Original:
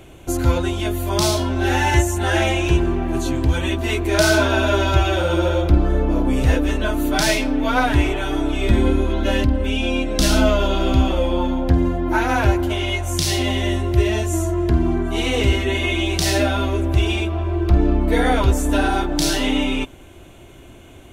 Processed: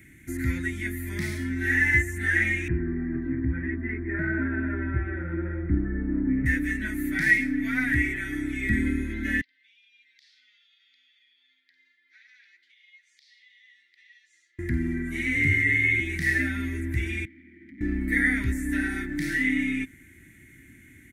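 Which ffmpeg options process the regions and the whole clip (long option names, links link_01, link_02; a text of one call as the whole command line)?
ffmpeg -i in.wav -filter_complex "[0:a]asettb=1/sr,asplit=3[link_01][link_02][link_03];[link_01]atrim=end=2.684[link_04];[link_02]atrim=start=2.68:end=6.46,asetpts=PTS-STARTPTS,afade=type=in:duration=0.004:curve=qsin,afade=type=out:start_time=3.776:duration=0.004:curve=qsin,lowpass=frequency=1500:width=0.5412,lowpass=frequency=1500:width=1.3066,equalizer=frequency=480:width=0.61:gain=3[link_05];[link_03]atrim=start=6.456[link_06];[link_04][link_05]acrossfade=duration=0.004:curve1=hsin:curve2=qsin[link_07];[link_07][link_06]acrossfade=duration=0.004:curve1=qsin:curve2=hsin,asettb=1/sr,asplit=3[link_08][link_09][link_10];[link_08]atrim=end=9.414[link_11];[link_09]atrim=start=9.41:end=14.59,asetpts=PTS-STARTPTS,afade=type=in:duration=0.004:curve=qsin,afade=type=out:start_time=5.176:duration=0.004:curve=qsin,asuperpass=centerf=4000:order=4:qfactor=2.3,aemphasis=mode=reproduction:type=75fm,acompressor=threshold=-47dB:ratio=3:attack=3.2:release=140:knee=1:detection=peak[link_12];[link_10]atrim=start=14.586[link_13];[link_11][link_12]acrossfade=duration=0.004:curve1=hsin:curve2=qsin[link_14];[link_14][link_13]acrossfade=duration=0.004:curve1=qsin:curve2=hsin,asettb=1/sr,asplit=3[link_15][link_16][link_17];[link_15]atrim=end=15.354[link_18];[link_16]atrim=start=15.35:end=16,asetpts=PTS-STARTPTS,afade=type=in:duration=0.004:curve=qsin,afade=type=out:start_time=0.646:duration=0.004:curve=qsin,afreqshift=26,aeval=exprs='val(0)+0.0447*sin(2*PI*2100*n/s)':channel_layout=same[link_19];[link_17]atrim=start=15.996[link_20];[link_18][link_19]acrossfade=duration=0.004:curve1=hsin:curve2=qsin[link_21];[link_21][link_20]acrossfade=duration=0.004:curve1=qsin:curve2=hsin,asettb=1/sr,asplit=3[link_22][link_23][link_24];[link_22]atrim=end=17.254[link_25];[link_23]atrim=start=17.25:end=17.81,asetpts=PTS-STARTPTS,afade=type=in:duration=0.004:curve=qsin,afade=type=out:start_time=0.556:duration=0.004:curve=qsin,asoftclip=type=hard:threshold=-21.5dB,asplit=3[link_26][link_27][link_28];[link_26]bandpass=frequency=270:width_type=q:width=8,volume=0dB[link_29];[link_27]bandpass=frequency=2290:width_type=q:width=8,volume=-6dB[link_30];[link_28]bandpass=frequency=3010:width_type=q:width=8,volume=-9dB[link_31];[link_29][link_30][link_31]amix=inputs=3:normalize=0[link_32];[link_24]atrim=start=17.806[link_33];[link_25][link_32]acrossfade=duration=0.004:curve1=hsin:curve2=qsin[link_34];[link_34][link_33]acrossfade=duration=0.004:curve1=qsin:curve2=hsin,highpass=frequency=170:poles=1,acrossover=split=3600[link_35][link_36];[link_36]acompressor=threshold=-37dB:ratio=4:attack=1:release=60[link_37];[link_35][link_37]amix=inputs=2:normalize=0,firequalizer=gain_entry='entry(270,0);entry(460,-25);entry(660,-29);entry(1100,-25);entry(1900,14);entry(2800,-15);entry(9200,0)':delay=0.05:min_phase=1,volume=-3dB" out.wav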